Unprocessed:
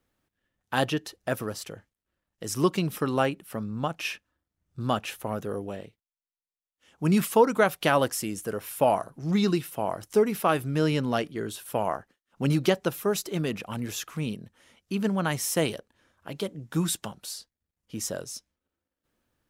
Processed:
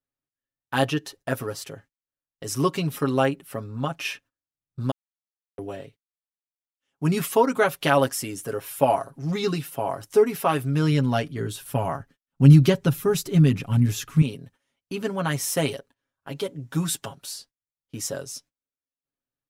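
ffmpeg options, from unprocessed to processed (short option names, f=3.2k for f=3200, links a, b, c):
-filter_complex "[0:a]asettb=1/sr,asplit=3[a][b][c];[a]atrim=end=10.584[d];[b]atrim=start=10.58:end=14.22,asetpts=PTS-STARTPTS,afade=t=in:d=0.004:c=qsin,afade=t=out:st=3.636:d=0.004:c=qsin,asubboost=boost=7.5:cutoff=230[e];[c]atrim=start=14.216[f];[d][e]acrossfade=d=0.004:c1=hsin:c2=qsin[g];[g][f]acrossfade=d=0.004:c1=qsin:c2=hsin,asplit=3[h][i][j];[h]atrim=end=4.91,asetpts=PTS-STARTPTS,afade=t=out:st=4.906:d=0.004:c=hsin[k];[i]atrim=start=4.91:end=5.58,asetpts=PTS-STARTPTS,volume=0[l];[j]atrim=start=5.58,asetpts=PTS-STARTPTS,afade=t=in:d=0.004:c=hsin[m];[k][l][m]concat=n=3:v=0:a=1,agate=range=-20dB:threshold=-52dB:ratio=16:detection=peak,aecho=1:1:7.3:0.73"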